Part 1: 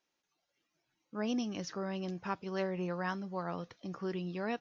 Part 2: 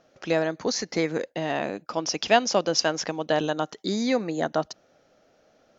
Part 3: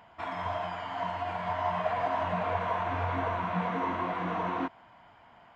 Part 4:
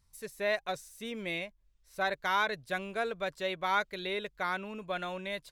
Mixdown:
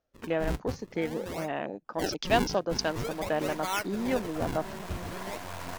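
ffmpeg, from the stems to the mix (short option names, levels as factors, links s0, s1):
-filter_complex "[0:a]adelay=2100,volume=0.237[s0];[1:a]afwtdn=0.0251,volume=0.531[s1];[2:a]acrusher=bits=3:dc=4:mix=0:aa=0.000001,adelay=2500,volume=0.631[s2];[3:a]agate=range=0.158:threshold=0.00178:ratio=16:detection=peak,acrusher=samples=42:mix=1:aa=0.000001:lfo=1:lforange=67.2:lforate=0.48,volume=0.794,asplit=2[s3][s4];[s4]apad=whole_len=355100[s5];[s2][s5]sidechaincompress=threshold=0.0178:ratio=8:attack=29:release=1430[s6];[s0][s1][s6][s3]amix=inputs=4:normalize=0"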